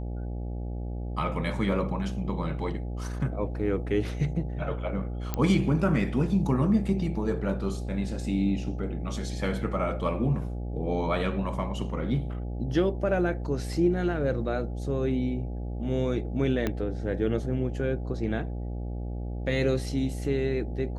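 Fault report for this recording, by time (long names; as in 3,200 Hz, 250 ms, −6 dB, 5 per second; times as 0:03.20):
mains buzz 60 Hz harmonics 14 −33 dBFS
0:05.34: click −14 dBFS
0:16.67: click −14 dBFS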